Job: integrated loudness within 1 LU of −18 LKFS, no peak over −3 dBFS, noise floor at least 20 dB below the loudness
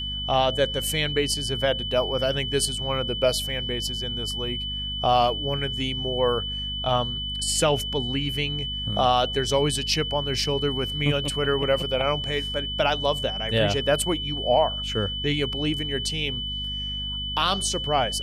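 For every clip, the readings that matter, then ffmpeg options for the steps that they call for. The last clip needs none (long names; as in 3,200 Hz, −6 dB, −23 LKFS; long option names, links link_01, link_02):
mains hum 50 Hz; hum harmonics up to 250 Hz; level of the hum −33 dBFS; interfering tone 3,000 Hz; level of the tone −29 dBFS; integrated loudness −24.5 LKFS; sample peak −9.0 dBFS; target loudness −18.0 LKFS
→ -af "bandreject=frequency=50:width_type=h:width=4,bandreject=frequency=100:width_type=h:width=4,bandreject=frequency=150:width_type=h:width=4,bandreject=frequency=200:width_type=h:width=4,bandreject=frequency=250:width_type=h:width=4"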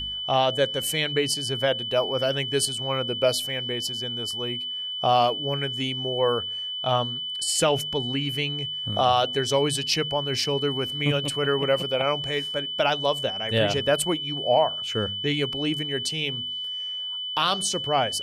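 mains hum none found; interfering tone 3,000 Hz; level of the tone −29 dBFS
→ -af "bandreject=frequency=3000:width=30"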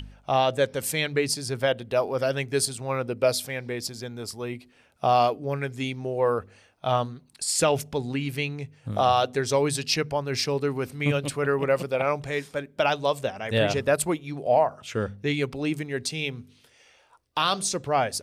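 interfering tone none found; integrated loudness −26.0 LKFS; sample peak −10.0 dBFS; target loudness −18.0 LKFS
→ -af "volume=8dB,alimiter=limit=-3dB:level=0:latency=1"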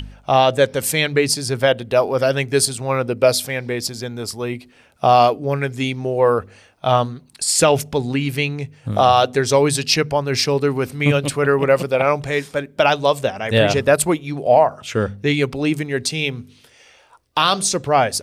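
integrated loudness −18.5 LKFS; sample peak −3.0 dBFS; background noise floor −52 dBFS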